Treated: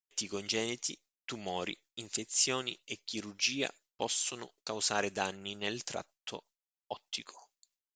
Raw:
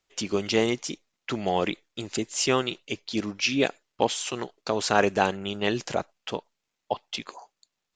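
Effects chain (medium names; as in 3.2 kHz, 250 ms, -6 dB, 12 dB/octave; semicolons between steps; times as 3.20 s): pre-emphasis filter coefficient 0.8; gate with hold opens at -60 dBFS; trim +1 dB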